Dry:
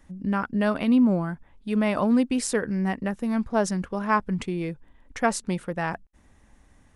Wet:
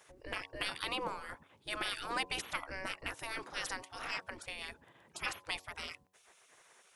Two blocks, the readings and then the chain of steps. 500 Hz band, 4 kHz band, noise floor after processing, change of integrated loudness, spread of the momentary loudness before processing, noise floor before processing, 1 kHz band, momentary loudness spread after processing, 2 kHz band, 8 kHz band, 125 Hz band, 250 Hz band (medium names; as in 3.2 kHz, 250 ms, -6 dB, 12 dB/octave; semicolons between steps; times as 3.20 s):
-19.0 dB, +1.0 dB, -67 dBFS, -14.5 dB, 10 LU, -58 dBFS, -12.5 dB, 10 LU, -6.5 dB, -11.5 dB, -24.5 dB, -29.0 dB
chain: spectral gate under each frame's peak -25 dB weak; de-hum 92.9 Hz, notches 12; trim +5.5 dB